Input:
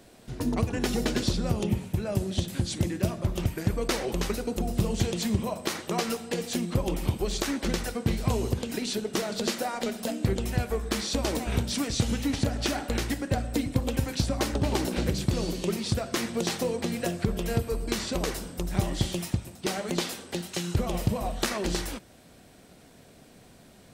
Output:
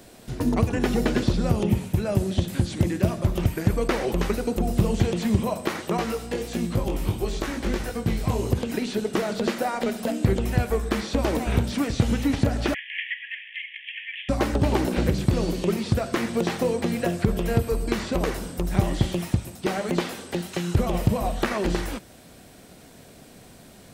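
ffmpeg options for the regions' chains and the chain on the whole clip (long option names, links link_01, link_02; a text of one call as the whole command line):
ffmpeg -i in.wav -filter_complex "[0:a]asettb=1/sr,asplit=3[link_01][link_02][link_03];[link_01]atrim=end=5.974[link_04];[link_02]atrim=start=5.97:end=8.5,asetpts=PTS-STARTPTS,afade=type=in:duration=0.004:curve=qsin,afade=type=out:start_time=2.526:duration=0.004:curve=qsin,flanger=delay=17.5:depth=3.2:speed=1.5,aeval=exprs='val(0)+0.00708*(sin(2*PI*60*n/s)+sin(2*PI*2*60*n/s)/2+sin(2*PI*3*60*n/s)/3+sin(2*PI*4*60*n/s)/4+sin(2*PI*5*60*n/s)/5)':channel_layout=same,aecho=1:1:96:0.158,atrim=end_sample=111573[link_05];[link_03]atrim=start=8.496[link_06];[link_04][link_05]acrossfade=duration=0.004:curve1=hsin:curve2=qsin[link_07];[link_07][link_06]acrossfade=duration=0.004:curve1=qsin:curve2=hsin,asettb=1/sr,asplit=3[link_08][link_09][link_10];[link_08]atrim=end=12.744[link_11];[link_09]atrim=start=12.74:end=14.29,asetpts=PTS-STARTPTS,afade=type=in:duration=0.004:curve=qsin,afade=type=out:start_time=1.546:duration=0.004:curve=qsin,acontrast=64,acrusher=bits=7:dc=4:mix=0:aa=0.000001,asuperpass=centerf=2400:order=20:qfactor=1.5[link_12];[link_10]atrim=start=14.286[link_13];[link_11][link_12]acrossfade=duration=0.004:curve1=hsin:curve2=qsin[link_14];[link_14][link_13]acrossfade=duration=0.004:curve1=qsin:curve2=hsin,acrossover=split=2700[link_15][link_16];[link_16]acompressor=threshold=-46dB:ratio=4:attack=1:release=60[link_17];[link_15][link_17]amix=inputs=2:normalize=0,highshelf=frequency=10000:gain=5,volume=5dB" out.wav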